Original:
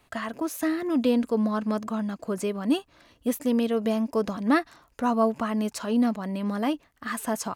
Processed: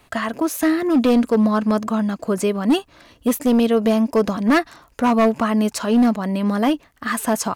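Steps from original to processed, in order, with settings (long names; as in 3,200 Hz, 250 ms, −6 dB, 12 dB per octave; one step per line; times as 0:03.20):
hard clipping −19.5 dBFS, distortion −15 dB
level +8.5 dB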